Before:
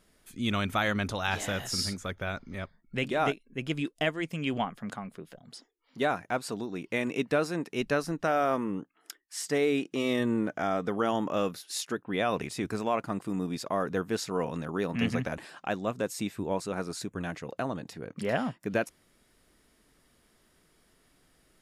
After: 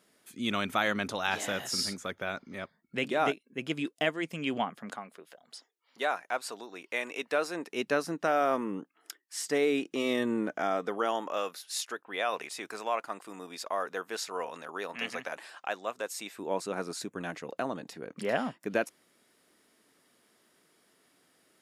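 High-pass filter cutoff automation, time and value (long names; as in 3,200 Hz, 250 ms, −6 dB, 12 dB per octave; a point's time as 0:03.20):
0:04.73 210 Hz
0:05.29 590 Hz
0:07.21 590 Hz
0:07.98 230 Hz
0:10.50 230 Hz
0:11.43 610 Hz
0:16.23 610 Hz
0:16.63 230 Hz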